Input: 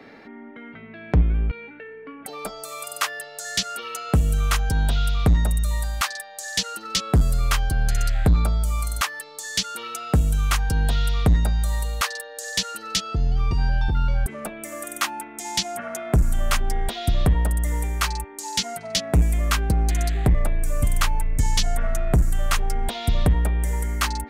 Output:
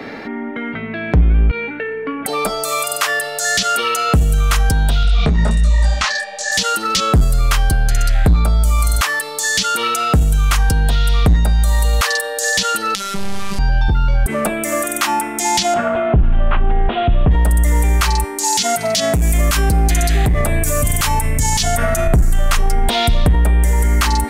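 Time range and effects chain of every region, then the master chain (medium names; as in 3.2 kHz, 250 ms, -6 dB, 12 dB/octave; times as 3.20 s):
5.03–6.52 s: low-pass 6.8 kHz 24 dB/octave + comb 4.7 ms, depth 43% + detune thickener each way 47 cents
12.95–13.59 s: one-bit delta coder 64 kbps, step -23 dBFS + robot voice 197 Hz
15.74–17.31 s: CVSD coder 32 kbps + steep low-pass 3 kHz 48 dB/octave + peaking EQ 2.1 kHz -7 dB 0.83 oct
18.44–22.07 s: high-pass 56 Hz + treble shelf 4.6 kHz +8.5 dB
whole clip: de-hum 381.9 Hz, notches 36; loudness maximiser +22 dB; trim -6 dB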